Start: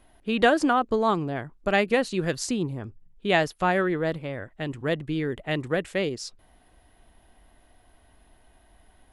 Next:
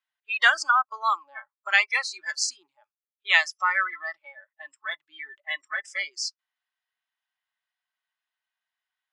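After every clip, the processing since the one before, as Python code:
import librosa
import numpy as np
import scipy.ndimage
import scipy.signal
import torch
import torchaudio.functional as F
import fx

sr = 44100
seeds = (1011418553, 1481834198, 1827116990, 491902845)

y = scipy.signal.sosfilt(scipy.signal.butter(4, 7100.0, 'lowpass', fs=sr, output='sos'), x)
y = fx.noise_reduce_blind(y, sr, reduce_db=28)
y = scipy.signal.sosfilt(scipy.signal.butter(4, 1200.0, 'highpass', fs=sr, output='sos'), y)
y = y * librosa.db_to_amplitude(8.0)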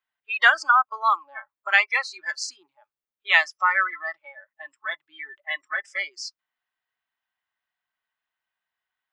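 y = fx.peak_eq(x, sr, hz=9200.0, db=-12.0, octaves=2.3)
y = y * librosa.db_to_amplitude(4.5)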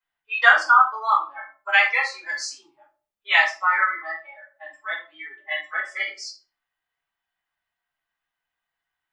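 y = fx.room_shoebox(x, sr, seeds[0], volume_m3=210.0, walls='furnished', distance_m=4.9)
y = y * librosa.db_to_amplitude(-7.0)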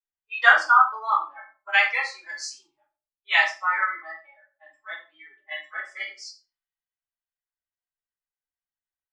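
y = x + 10.0 ** (-19.5 / 20.0) * np.pad(x, (int(91 * sr / 1000.0), 0))[:len(x)]
y = fx.band_widen(y, sr, depth_pct=40)
y = y * librosa.db_to_amplitude(-4.0)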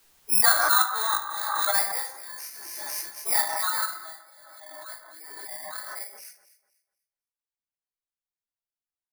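y = fx.bit_reversed(x, sr, seeds[1], block=16)
y = fx.echo_alternate(y, sr, ms=124, hz=1600.0, feedback_pct=50, wet_db=-10.5)
y = fx.pre_swell(y, sr, db_per_s=26.0)
y = y * librosa.db_to_amplitude(-5.5)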